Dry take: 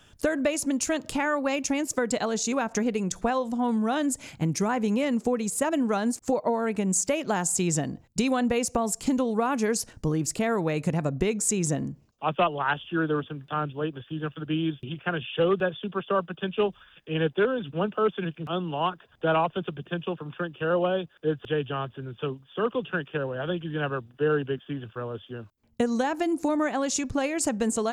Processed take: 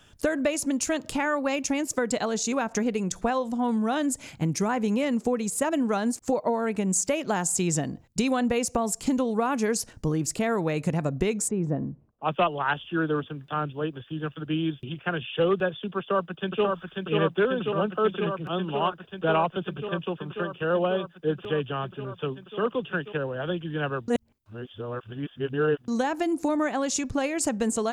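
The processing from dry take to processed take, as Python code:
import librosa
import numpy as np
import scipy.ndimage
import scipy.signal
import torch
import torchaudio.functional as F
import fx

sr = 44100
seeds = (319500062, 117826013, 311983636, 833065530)

y = fx.lowpass(x, sr, hz=1100.0, slope=12, at=(11.47, 12.24), fade=0.02)
y = fx.echo_throw(y, sr, start_s=15.98, length_s=0.66, ms=540, feedback_pct=85, wet_db=-3.0)
y = fx.edit(y, sr, fx.reverse_span(start_s=24.08, length_s=1.8), tone=tone)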